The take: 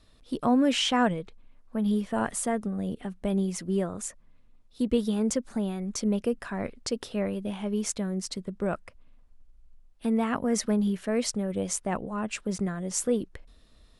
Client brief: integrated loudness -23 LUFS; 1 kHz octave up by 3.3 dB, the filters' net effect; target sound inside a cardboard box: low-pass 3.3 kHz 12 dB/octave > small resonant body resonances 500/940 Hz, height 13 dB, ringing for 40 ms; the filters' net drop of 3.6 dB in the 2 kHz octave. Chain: low-pass 3.3 kHz 12 dB/octave; peaking EQ 1 kHz +6 dB; peaking EQ 2 kHz -7 dB; small resonant body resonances 500/940 Hz, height 13 dB, ringing for 40 ms; trim +1.5 dB

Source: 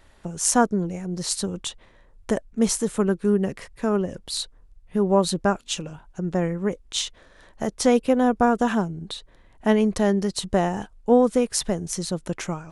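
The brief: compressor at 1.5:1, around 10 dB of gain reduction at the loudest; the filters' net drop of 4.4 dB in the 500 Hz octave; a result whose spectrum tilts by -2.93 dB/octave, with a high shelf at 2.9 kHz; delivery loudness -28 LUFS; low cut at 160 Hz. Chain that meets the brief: high-pass 160 Hz; peaking EQ 500 Hz -5.5 dB; treble shelf 2.9 kHz +8.5 dB; compression 1.5:1, threshold -39 dBFS; trim +3 dB

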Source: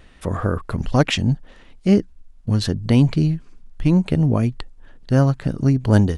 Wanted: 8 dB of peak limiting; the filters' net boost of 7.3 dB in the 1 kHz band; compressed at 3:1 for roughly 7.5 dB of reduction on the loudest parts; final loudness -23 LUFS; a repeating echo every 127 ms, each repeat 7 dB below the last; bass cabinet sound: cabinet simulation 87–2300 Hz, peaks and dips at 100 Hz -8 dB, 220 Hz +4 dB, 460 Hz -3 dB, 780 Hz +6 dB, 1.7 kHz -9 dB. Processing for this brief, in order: peaking EQ 1 kHz +6.5 dB; compression 3:1, threshold -19 dBFS; peak limiter -16 dBFS; cabinet simulation 87–2300 Hz, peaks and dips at 100 Hz -8 dB, 220 Hz +4 dB, 460 Hz -3 dB, 780 Hz +6 dB, 1.7 kHz -9 dB; feedback delay 127 ms, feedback 45%, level -7 dB; trim +4 dB

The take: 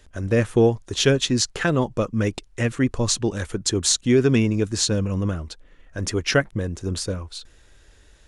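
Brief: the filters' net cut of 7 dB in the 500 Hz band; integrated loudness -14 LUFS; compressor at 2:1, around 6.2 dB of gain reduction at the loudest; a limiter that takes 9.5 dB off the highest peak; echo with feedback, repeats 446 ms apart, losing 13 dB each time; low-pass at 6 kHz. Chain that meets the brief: low-pass 6 kHz; peaking EQ 500 Hz -9 dB; compression 2:1, threshold -27 dBFS; peak limiter -20.5 dBFS; feedback delay 446 ms, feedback 22%, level -13 dB; trim +17 dB

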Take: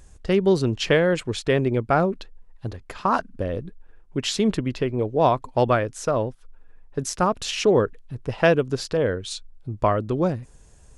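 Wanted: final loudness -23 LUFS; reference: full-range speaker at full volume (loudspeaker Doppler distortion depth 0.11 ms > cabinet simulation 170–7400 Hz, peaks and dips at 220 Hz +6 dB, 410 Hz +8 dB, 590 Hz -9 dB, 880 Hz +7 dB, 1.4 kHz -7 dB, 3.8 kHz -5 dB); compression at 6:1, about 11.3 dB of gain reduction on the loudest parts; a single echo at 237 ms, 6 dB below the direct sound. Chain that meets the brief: compression 6:1, threshold -26 dBFS; delay 237 ms -6 dB; loudspeaker Doppler distortion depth 0.11 ms; cabinet simulation 170–7400 Hz, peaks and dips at 220 Hz +6 dB, 410 Hz +8 dB, 590 Hz -9 dB, 880 Hz +7 dB, 1.4 kHz -7 dB, 3.8 kHz -5 dB; trim +6.5 dB

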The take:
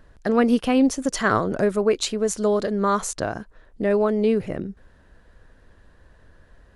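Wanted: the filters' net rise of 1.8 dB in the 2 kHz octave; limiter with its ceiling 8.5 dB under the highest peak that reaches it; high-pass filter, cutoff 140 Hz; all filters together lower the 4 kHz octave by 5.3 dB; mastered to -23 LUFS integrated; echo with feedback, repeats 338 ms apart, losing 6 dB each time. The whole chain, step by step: high-pass 140 Hz; peaking EQ 2 kHz +4 dB; peaking EQ 4 kHz -8 dB; peak limiter -13.5 dBFS; feedback delay 338 ms, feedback 50%, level -6 dB; trim +0.5 dB

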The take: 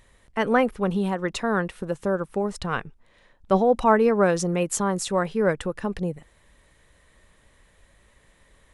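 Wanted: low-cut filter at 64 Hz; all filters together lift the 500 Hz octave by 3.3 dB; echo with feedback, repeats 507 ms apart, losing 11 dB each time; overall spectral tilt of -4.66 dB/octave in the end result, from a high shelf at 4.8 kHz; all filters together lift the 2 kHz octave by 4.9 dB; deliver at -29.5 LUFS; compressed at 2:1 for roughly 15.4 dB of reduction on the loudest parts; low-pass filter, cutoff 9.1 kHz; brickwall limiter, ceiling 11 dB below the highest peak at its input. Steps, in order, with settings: high-pass 64 Hz; low-pass 9.1 kHz; peaking EQ 500 Hz +3.5 dB; peaking EQ 2 kHz +5.5 dB; treble shelf 4.8 kHz +6 dB; compression 2:1, threshold -41 dBFS; peak limiter -30.5 dBFS; feedback delay 507 ms, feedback 28%, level -11 dB; trim +10.5 dB

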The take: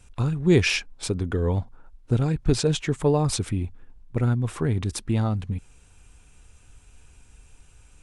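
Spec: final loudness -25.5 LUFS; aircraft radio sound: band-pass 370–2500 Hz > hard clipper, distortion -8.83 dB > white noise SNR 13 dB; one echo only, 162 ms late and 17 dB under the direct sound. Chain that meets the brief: band-pass 370–2500 Hz; delay 162 ms -17 dB; hard clipper -24 dBFS; white noise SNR 13 dB; trim +8 dB

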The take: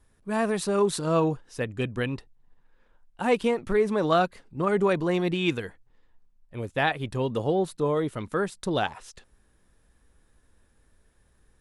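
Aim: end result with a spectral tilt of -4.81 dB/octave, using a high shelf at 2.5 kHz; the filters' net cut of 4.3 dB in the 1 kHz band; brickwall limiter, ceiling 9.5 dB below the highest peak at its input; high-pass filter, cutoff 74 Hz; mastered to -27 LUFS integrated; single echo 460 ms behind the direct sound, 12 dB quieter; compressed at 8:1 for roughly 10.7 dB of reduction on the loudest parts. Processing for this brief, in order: high-pass 74 Hz; peaking EQ 1 kHz -7.5 dB; treble shelf 2.5 kHz +7.5 dB; compression 8:1, threshold -30 dBFS; peak limiter -28 dBFS; delay 460 ms -12 dB; trim +10.5 dB

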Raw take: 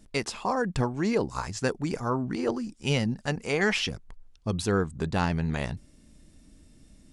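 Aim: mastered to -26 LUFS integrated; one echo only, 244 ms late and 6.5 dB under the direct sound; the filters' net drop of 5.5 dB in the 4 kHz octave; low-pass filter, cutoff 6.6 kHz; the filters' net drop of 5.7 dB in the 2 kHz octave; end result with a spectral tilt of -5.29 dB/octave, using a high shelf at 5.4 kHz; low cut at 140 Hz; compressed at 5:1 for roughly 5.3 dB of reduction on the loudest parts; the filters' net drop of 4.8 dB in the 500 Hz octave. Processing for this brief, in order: high-pass 140 Hz; low-pass 6.6 kHz; peaking EQ 500 Hz -5.5 dB; peaking EQ 2 kHz -6 dB; peaking EQ 4 kHz -6.5 dB; treble shelf 5.4 kHz +4.5 dB; compression 5:1, threshold -30 dBFS; delay 244 ms -6.5 dB; trim +9 dB

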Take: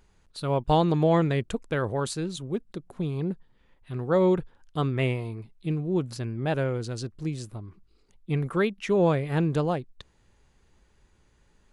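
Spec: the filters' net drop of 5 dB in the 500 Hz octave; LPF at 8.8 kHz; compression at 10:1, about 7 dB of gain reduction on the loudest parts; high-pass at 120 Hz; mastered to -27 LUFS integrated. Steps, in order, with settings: high-pass 120 Hz; low-pass 8.8 kHz; peaking EQ 500 Hz -6.5 dB; compression 10:1, threshold -27 dBFS; trim +7 dB

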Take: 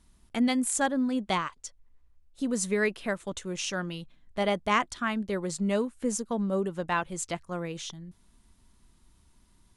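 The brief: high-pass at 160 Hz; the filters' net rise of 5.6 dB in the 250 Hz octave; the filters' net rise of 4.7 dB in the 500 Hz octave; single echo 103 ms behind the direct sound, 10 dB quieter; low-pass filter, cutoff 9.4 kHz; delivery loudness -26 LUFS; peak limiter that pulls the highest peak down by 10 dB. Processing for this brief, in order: high-pass 160 Hz; low-pass 9.4 kHz; peaking EQ 250 Hz +6.5 dB; peaking EQ 500 Hz +4 dB; peak limiter -18.5 dBFS; delay 103 ms -10 dB; trim +2.5 dB

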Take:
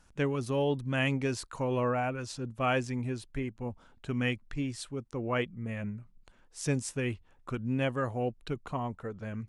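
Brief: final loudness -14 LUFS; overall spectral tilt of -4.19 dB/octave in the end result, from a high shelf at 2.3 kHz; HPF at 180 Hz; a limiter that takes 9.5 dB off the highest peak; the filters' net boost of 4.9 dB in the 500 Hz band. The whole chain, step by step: high-pass 180 Hz; peaking EQ 500 Hz +5.5 dB; treble shelf 2.3 kHz +8 dB; trim +19.5 dB; peak limiter -1 dBFS

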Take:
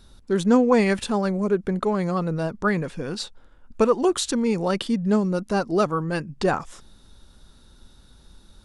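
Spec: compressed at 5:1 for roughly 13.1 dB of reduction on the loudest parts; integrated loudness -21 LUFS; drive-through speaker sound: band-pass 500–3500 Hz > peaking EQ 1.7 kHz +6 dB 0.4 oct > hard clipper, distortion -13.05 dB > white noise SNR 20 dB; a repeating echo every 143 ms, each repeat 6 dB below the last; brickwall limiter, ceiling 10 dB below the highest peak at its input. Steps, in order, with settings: compression 5:1, threshold -28 dBFS; peak limiter -25 dBFS; band-pass 500–3500 Hz; peaking EQ 1.7 kHz +6 dB 0.4 oct; feedback delay 143 ms, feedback 50%, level -6 dB; hard clipper -33 dBFS; white noise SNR 20 dB; trim +18.5 dB

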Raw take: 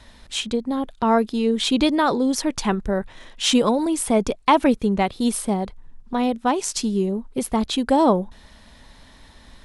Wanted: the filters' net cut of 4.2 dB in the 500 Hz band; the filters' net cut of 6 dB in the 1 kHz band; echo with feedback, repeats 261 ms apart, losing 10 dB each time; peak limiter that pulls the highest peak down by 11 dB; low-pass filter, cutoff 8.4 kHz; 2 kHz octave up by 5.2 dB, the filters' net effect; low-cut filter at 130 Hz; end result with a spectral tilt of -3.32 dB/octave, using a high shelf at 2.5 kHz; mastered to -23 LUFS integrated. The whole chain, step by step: high-pass 130 Hz; low-pass 8.4 kHz; peaking EQ 500 Hz -3.5 dB; peaking EQ 1 kHz -8.5 dB; peaking EQ 2 kHz +6 dB; treble shelf 2.5 kHz +6.5 dB; peak limiter -12.5 dBFS; feedback delay 261 ms, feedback 32%, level -10 dB; trim +0.5 dB

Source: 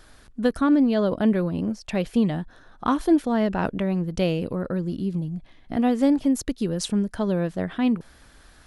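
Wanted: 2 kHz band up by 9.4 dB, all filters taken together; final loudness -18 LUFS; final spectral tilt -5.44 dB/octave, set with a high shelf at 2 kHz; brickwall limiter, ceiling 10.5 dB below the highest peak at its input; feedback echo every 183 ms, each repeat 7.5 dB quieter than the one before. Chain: treble shelf 2 kHz +6.5 dB; peaking EQ 2 kHz +8.5 dB; peak limiter -16.5 dBFS; feedback delay 183 ms, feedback 42%, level -7.5 dB; trim +7.5 dB

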